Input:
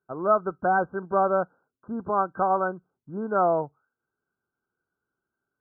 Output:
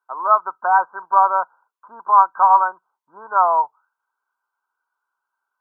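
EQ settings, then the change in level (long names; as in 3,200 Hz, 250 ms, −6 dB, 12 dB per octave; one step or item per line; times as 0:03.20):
high-pass with resonance 970 Hz, resonance Q 8.1
+1.0 dB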